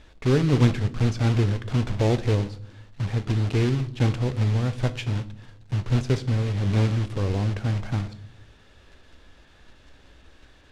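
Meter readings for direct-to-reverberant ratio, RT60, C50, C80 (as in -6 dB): 11.0 dB, 0.60 s, 17.0 dB, 21.0 dB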